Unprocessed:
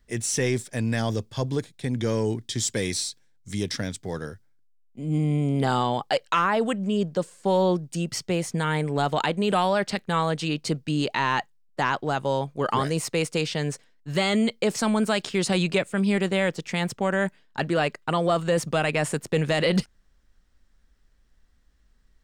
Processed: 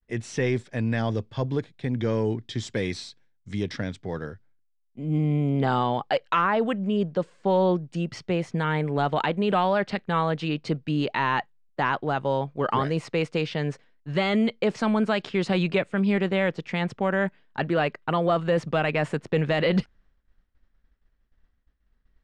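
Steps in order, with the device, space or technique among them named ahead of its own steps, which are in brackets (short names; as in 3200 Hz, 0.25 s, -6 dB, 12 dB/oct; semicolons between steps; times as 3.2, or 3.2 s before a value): hearing-loss simulation (LPF 3000 Hz 12 dB/oct; expander -54 dBFS)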